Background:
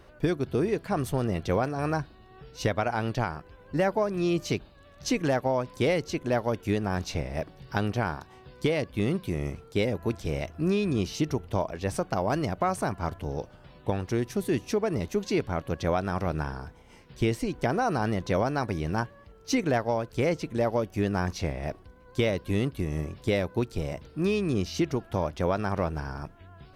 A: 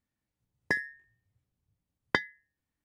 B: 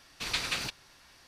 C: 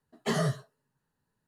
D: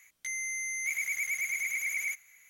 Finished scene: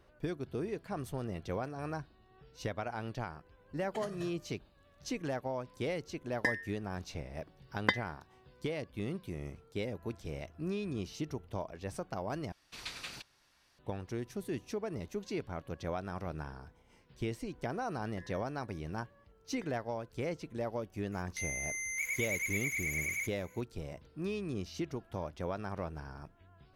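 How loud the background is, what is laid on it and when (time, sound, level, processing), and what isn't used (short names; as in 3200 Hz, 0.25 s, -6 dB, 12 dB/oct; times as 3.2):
background -11 dB
3.69 add C -10 dB + negative-ratio compressor -33 dBFS, ratio -0.5
5.74 add A -2.5 dB + comb 3.9 ms, depth 54%
12.52 replace with B -11.5 dB
17.47 add A -9 dB + compressor, threshold -43 dBFS
21.12 add D -3.5 dB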